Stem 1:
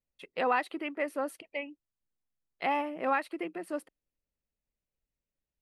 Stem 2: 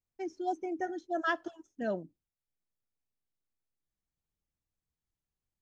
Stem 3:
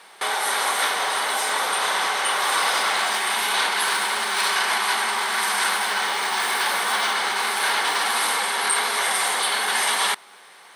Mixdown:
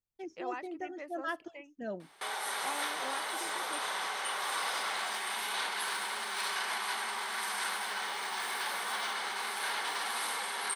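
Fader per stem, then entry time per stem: -13.0, -5.5, -13.0 dB; 0.00, 0.00, 2.00 s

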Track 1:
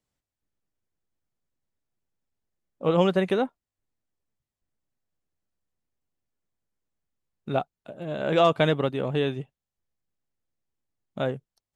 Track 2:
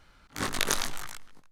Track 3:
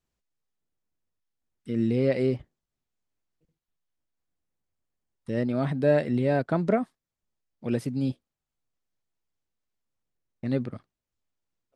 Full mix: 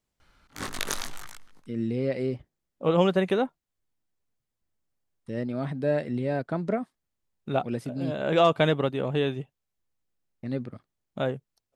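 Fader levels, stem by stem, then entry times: -0.5, -3.5, -4.0 dB; 0.00, 0.20, 0.00 s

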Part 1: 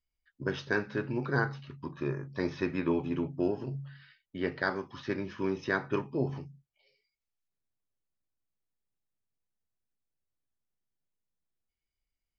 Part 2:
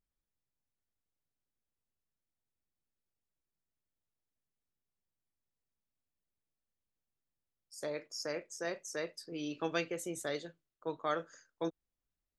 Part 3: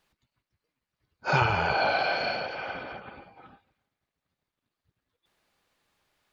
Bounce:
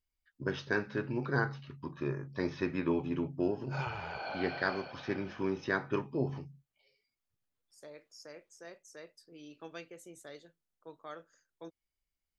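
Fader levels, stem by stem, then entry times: -2.0, -11.5, -15.0 dB; 0.00, 0.00, 2.45 s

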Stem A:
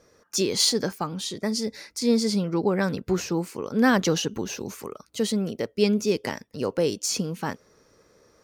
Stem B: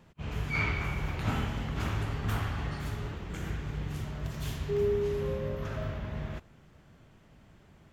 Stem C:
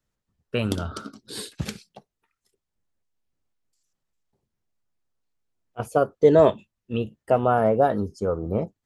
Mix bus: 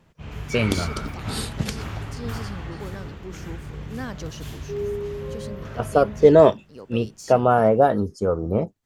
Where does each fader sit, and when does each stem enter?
-14.0, 0.0, +3.0 dB; 0.15, 0.00, 0.00 s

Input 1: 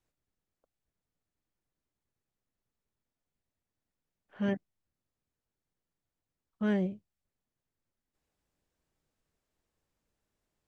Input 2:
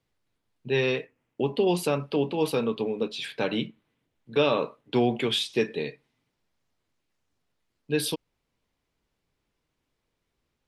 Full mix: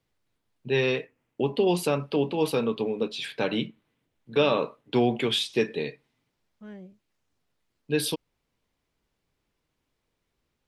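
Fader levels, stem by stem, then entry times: -14.5, +0.5 dB; 0.00, 0.00 s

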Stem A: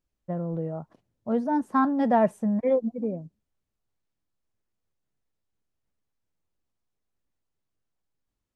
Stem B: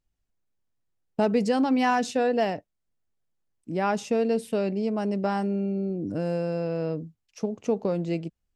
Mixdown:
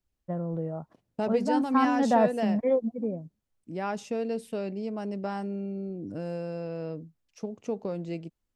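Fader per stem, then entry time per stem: -1.5, -6.5 dB; 0.00, 0.00 s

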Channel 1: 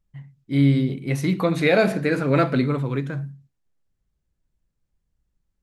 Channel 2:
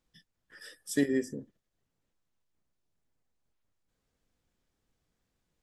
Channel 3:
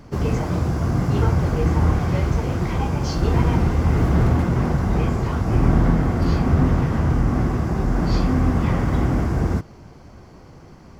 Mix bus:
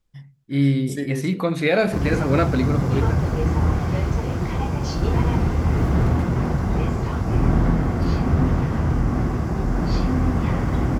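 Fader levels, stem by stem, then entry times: -1.0, -0.5, -1.5 dB; 0.00, 0.00, 1.80 s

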